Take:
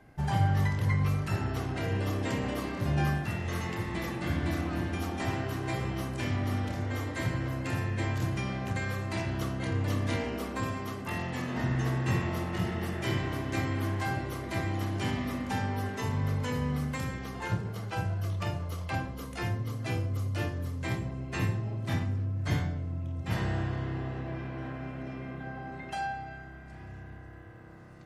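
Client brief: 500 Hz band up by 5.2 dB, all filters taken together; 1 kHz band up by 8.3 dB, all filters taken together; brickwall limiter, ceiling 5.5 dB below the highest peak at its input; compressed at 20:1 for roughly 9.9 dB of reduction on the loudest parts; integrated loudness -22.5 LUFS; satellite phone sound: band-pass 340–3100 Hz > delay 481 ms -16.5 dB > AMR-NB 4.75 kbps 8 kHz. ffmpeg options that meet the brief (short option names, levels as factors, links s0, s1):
-af "equalizer=f=500:t=o:g=5.5,equalizer=f=1000:t=o:g=9,acompressor=threshold=0.0355:ratio=20,alimiter=level_in=1.26:limit=0.0631:level=0:latency=1,volume=0.794,highpass=340,lowpass=3100,aecho=1:1:481:0.15,volume=8.91" -ar 8000 -c:a libopencore_amrnb -b:a 4750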